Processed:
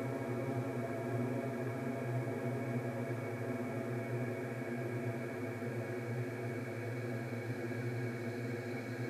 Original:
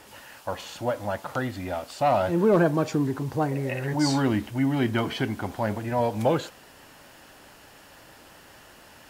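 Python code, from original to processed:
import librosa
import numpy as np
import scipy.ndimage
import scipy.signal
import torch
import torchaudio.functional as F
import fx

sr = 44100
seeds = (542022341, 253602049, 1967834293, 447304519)

y = fx.doppler_pass(x, sr, speed_mps=47, closest_m=4.5, pass_at_s=1.95)
y = fx.paulstretch(y, sr, seeds[0], factor=48.0, window_s=1.0, from_s=3.45)
y = F.gain(torch.from_numpy(y), 12.0).numpy()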